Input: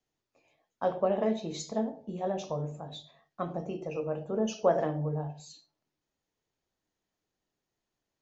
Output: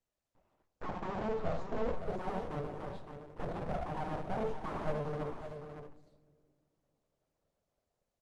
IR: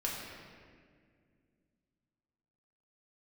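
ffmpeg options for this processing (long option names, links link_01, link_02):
-filter_complex "[0:a]dynaudnorm=framelen=170:gausssize=5:maxgain=10.5dB,aeval=exprs='(tanh(25.1*val(0)+0.65)-tanh(0.65))/25.1':channel_layout=same,bandpass=frequency=280:width_type=q:width=3.3:csg=0,aeval=exprs='abs(val(0))':channel_layout=same,asettb=1/sr,asplit=3[link_01][link_02][link_03];[link_01]atrim=end=1.394[link_04];[link_02]atrim=start=1.39:end=2.03,asetpts=PTS-STARTPTS,afade=type=in:duration=0.004:curve=qsin,afade=type=out:start_time=0.636:duration=0.004:curve=qsin,asplit=2[link_05][link_06];[link_06]adelay=12,volume=-6.5dB[link_07];[link_05][link_07]amix=inputs=2:normalize=0,atrim=end_sample=28224[link_08];[link_03]atrim=start=2.026[link_09];[link_04][link_08]acrossfade=duration=0.004:curve1=hsin:curve2=qsin[link_10];[link_10][link_09]acrossfade=duration=0.004:curve1=qsin:curve2=hsin,aecho=1:1:563:0.398,asplit=2[link_11][link_12];[1:a]atrim=start_sample=2205,lowshelf=frequency=68:gain=-3.5[link_13];[link_12][link_13]afir=irnorm=-1:irlink=0,volume=-19.5dB[link_14];[link_11][link_14]amix=inputs=2:normalize=0,volume=8dB" -ar 48000 -c:a libopus -b:a 24k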